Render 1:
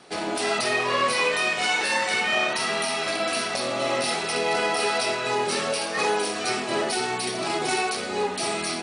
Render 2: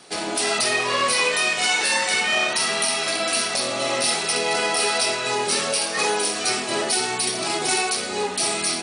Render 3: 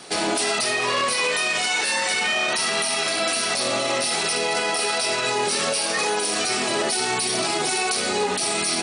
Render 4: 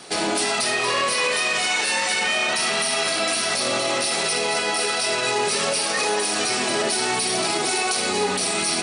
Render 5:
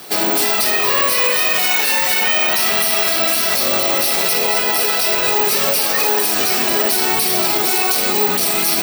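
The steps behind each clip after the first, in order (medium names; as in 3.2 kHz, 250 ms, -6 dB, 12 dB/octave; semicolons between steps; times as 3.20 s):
treble shelf 4.2 kHz +11 dB
peak limiter -20 dBFS, peak gain reduction 10.5 dB; trim +6 dB
two-band feedback delay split 550 Hz, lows 85 ms, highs 235 ms, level -9.5 dB
careless resampling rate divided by 2×, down none, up zero stuff; trim +3.5 dB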